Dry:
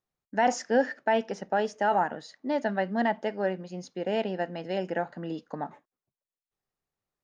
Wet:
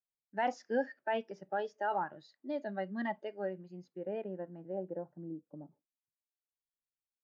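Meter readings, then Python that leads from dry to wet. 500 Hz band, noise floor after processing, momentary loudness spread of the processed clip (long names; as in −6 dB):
−9.0 dB, below −85 dBFS, 12 LU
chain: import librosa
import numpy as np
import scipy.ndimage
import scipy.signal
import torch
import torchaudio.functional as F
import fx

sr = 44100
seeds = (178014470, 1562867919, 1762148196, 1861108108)

y = fx.filter_sweep_lowpass(x, sr, from_hz=3200.0, to_hz=120.0, start_s=3.52, end_s=7.11, q=1.0)
y = fx.noise_reduce_blind(y, sr, reduce_db=12)
y = y * 10.0 ** (-8.5 / 20.0)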